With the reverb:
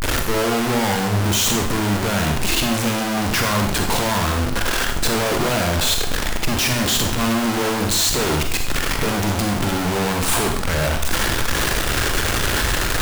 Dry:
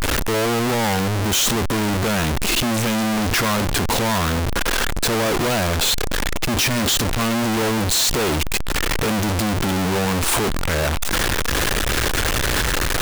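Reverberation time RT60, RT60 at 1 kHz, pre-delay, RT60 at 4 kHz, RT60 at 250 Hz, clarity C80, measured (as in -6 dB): 0.65 s, 0.65 s, 25 ms, 0.65 s, 0.70 s, 8.5 dB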